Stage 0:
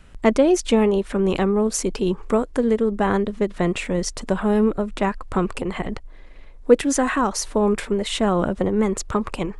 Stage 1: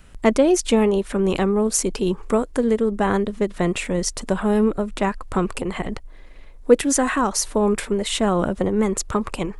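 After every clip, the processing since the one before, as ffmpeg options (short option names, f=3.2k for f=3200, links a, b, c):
-af "highshelf=f=8.9k:g=11"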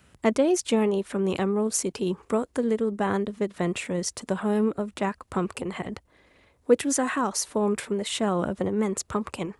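-af "highpass=f=69:w=0.5412,highpass=f=69:w=1.3066,volume=-5.5dB"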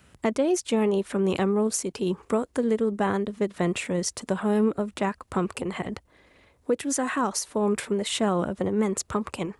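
-af "alimiter=limit=-16dB:level=0:latency=1:release=365,volume=1.5dB"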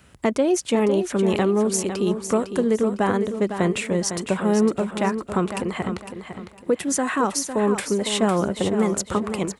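-af "aecho=1:1:505|1010|1515|2020:0.355|0.114|0.0363|0.0116,volume=3.5dB"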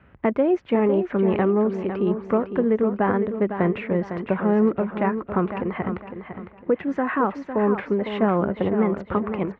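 -af "lowpass=f=2.2k:w=0.5412,lowpass=f=2.2k:w=1.3066"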